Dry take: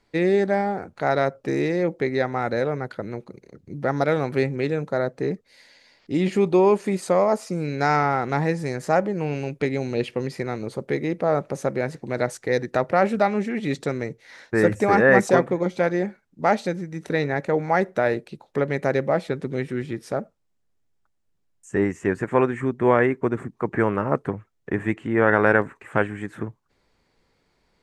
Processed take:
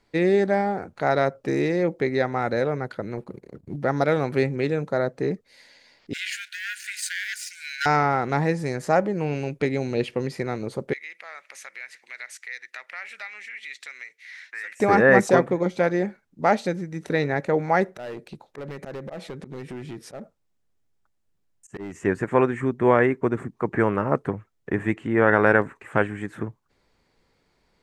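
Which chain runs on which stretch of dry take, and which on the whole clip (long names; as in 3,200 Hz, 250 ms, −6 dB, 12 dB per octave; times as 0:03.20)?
0:03.17–0:03.76: parametric band 3,300 Hz −8 dB 1.8 octaves + notch filter 6,200 Hz, Q 6.7 + leveller curve on the samples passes 1
0:06.13–0:07.86: leveller curve on the samples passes 2 + linear-phase brick-wall high-pass 1,400 Hz
0:10.93–0:14.80: high-pass with resonance 2,100 Hz, resonance Q 3 + downward compressor 2 to 1, threshold −40 dBFS
0:17.91–0:21.96: volume swells 123 ms + downward compressor 3 to 1, threshold −30 dBFS + hard clipping −30.5 dBFS
whole clip: no processing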